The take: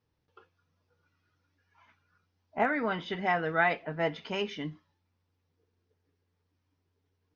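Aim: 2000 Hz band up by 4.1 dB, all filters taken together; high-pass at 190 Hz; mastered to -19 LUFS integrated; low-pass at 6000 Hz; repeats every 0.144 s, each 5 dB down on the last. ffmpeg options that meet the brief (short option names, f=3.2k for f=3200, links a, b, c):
-af "highpass=190,lowpass=6k,equalizer=f=2k:t=o:g=5,aecho=1:1:144|288|432|576|720|864|1008:0.562|0.315|0.176|0.0988|0.0553|0.031|0.0173,volume=8dB"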